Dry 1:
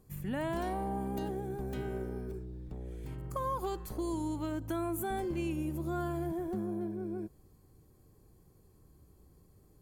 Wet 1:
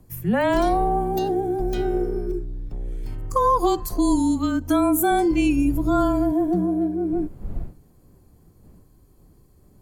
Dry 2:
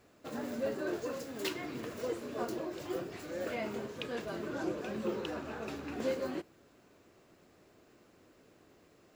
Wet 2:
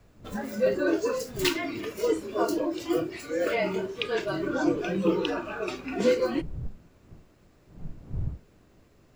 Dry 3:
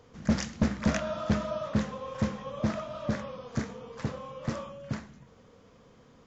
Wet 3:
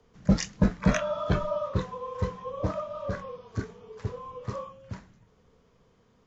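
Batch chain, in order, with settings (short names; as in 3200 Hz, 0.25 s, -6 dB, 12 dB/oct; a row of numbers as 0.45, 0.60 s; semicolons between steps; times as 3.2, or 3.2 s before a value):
wind noise 180 Hz -51 dBFS; spectral noise reduction 11 dB; frequency shift -24 Hz; normalise peaks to -9 dBFS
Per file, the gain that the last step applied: +16.5, +11.5, +4.0 dB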